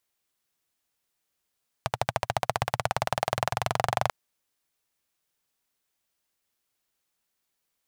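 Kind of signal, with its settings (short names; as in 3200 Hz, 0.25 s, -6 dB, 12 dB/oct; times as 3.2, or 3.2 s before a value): single-cylinder engine model, changing speed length 2.24 s, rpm 1500, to 2900, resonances 120/710 Hz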